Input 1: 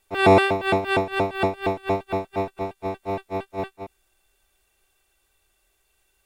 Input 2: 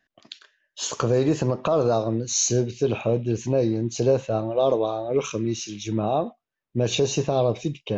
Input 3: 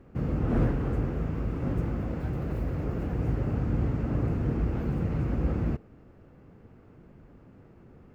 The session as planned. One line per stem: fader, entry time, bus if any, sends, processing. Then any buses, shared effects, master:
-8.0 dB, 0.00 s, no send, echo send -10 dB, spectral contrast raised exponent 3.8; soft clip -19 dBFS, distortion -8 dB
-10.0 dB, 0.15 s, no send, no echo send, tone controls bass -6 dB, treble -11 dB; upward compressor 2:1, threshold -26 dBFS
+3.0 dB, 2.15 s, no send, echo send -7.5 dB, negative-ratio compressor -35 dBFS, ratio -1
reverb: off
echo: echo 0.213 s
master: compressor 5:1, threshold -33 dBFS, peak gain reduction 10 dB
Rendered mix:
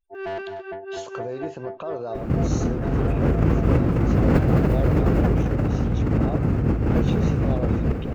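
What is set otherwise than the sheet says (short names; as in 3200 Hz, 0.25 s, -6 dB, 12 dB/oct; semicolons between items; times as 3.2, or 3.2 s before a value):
stem 3 +3.0 dB -> +14.5 dB; master: missing compressor 5:1, threshold -33 dBFS, peak gain reduction 10 dB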